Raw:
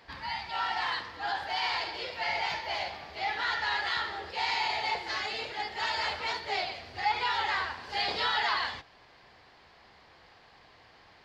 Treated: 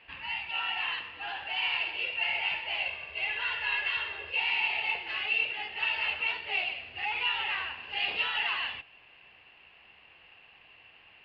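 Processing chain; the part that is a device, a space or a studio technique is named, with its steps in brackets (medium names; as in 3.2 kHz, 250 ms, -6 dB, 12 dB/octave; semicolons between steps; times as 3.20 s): overdriven synthesiser ladder filter (saturation -24 dBFS, distortion -18 dB; four-pole ladder low-pass 2.8 kHz, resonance 90%); 2.85–4.40 s: comb 1.9 ms, depth 60%; trim +6.5 dB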